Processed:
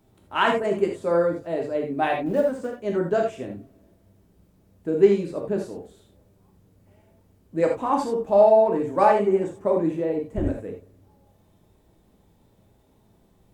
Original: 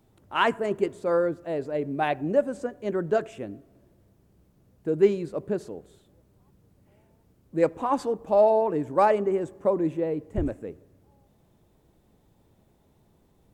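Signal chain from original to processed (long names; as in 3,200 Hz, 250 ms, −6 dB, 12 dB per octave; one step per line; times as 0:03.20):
0:02.26–0:02.78: mu-law and A-law mismatch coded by A
reverb whose tail is shaped and stops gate 110 ms flat, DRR 0.5 dB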